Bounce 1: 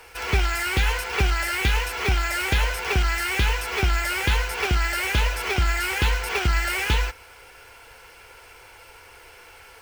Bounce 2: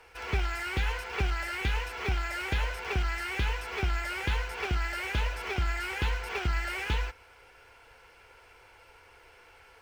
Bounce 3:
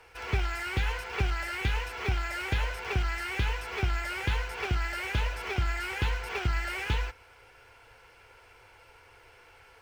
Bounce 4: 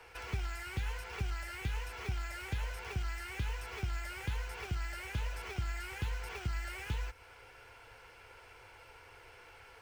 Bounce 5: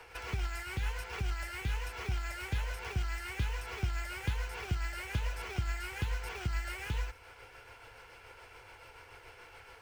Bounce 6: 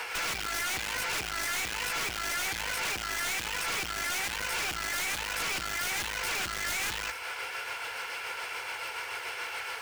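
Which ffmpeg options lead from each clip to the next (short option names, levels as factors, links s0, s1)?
-af "lowpass=f=3500:p=1,volume=0.422"
-af "equalizer=f=110:w=4.3:g=7.5"
-filter_complex "[0:a]acrossover=split=130|2700|6000[s0][s1][s2][s3];[s0]acompressor=threshold=0.0178:ratio=4[s4];[s1]acompressor=threshold=0.00501:ratio=4[s5];[s2]acompressor=threshold=0.00158:ratio=4[s6];[s3]acompressor=threshold=0.00178:ratio=4[s7];[s4][s5][s6][s7]amix=inputs=4:normalize=0"
-af "tremolo=f=7:d=0.36,volume=1.58"
-af "aeval=exprs='(tanh(63.1*val(0)+0.45)-tanh(0.45))/63.1':c=same,highpass=f=1400:p=1,aeval=exprs='0.02*sin(PI/2*4.47*val(0)/0.02)':c=same,volume=1.88"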